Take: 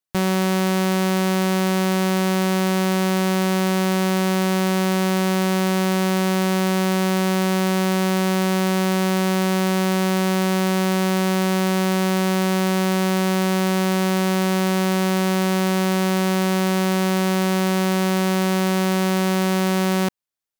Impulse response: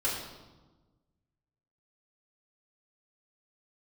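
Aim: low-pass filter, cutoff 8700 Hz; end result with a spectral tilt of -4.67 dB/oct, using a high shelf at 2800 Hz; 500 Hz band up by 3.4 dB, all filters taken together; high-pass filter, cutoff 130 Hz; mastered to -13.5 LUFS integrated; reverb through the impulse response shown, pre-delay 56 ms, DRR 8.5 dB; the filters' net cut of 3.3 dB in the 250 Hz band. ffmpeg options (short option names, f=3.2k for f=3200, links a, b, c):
-filter_complex "[0:a]highpass=130,lowpass=8.7k,equalizer=f=250:t=o:g=-6.5,equalizer=f=500:t=o:g=7.5,highshelf=f=2.8k:g=-6.5,asplit=2[a][b];[1:a]atrim=start_sample=2205,adelay=56[c];[b][c]afir=irnorm=-1:irlink=0,volume=-16dB[d];[a][d]amix=inputs=2:normalize=0,volume=7.5dB"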